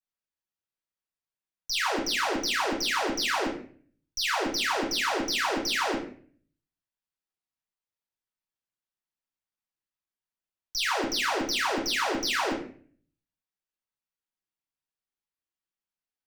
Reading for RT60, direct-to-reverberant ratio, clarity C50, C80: 0.45 s, -6.5 dB, 6.0 dB, 10.0 dB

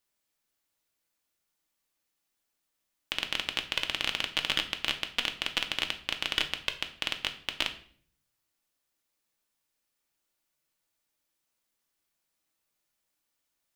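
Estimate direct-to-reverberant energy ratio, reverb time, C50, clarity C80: 5.0 dB, 0.55 s, 12.5 dB, 16.5 dB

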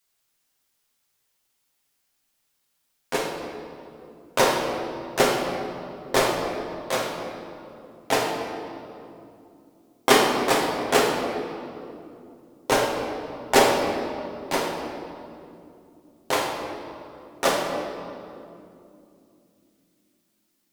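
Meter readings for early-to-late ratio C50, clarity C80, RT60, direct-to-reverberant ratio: 2.5 dB, 4.0 dB, 2.7 s, -2.0 dB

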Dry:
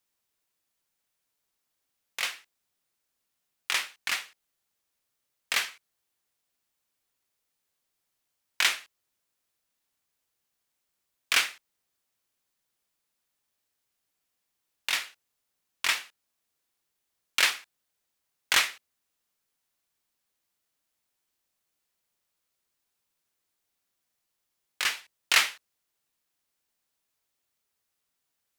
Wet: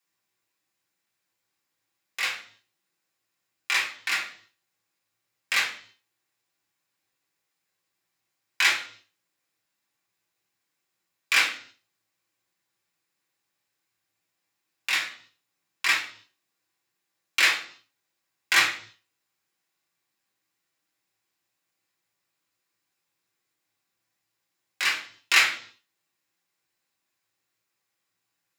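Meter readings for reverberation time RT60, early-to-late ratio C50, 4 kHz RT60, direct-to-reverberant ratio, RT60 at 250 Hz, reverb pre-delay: 0.55 s, 9.5 dB, 0.55 s, -3.5 dB, 0.65 s, 3 ms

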